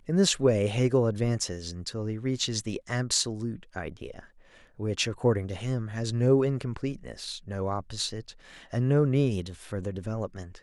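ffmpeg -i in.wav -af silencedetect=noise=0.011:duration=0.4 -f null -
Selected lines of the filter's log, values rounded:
silence_start: 4.19
silence_end: 4.80 | silence_duration: 0.60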